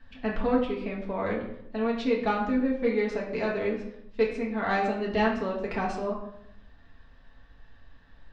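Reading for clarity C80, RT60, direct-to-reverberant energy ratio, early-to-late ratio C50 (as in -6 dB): 9.0 dB, 0.75 s, -3.0 dB, 6.0 dB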